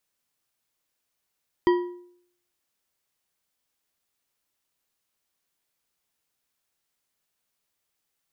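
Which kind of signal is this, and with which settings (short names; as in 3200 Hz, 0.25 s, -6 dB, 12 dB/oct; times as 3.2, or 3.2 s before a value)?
metal hit bar, lowest mode 354 Hz, decay 0.65 s, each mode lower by 7.5 dB, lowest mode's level -14 dB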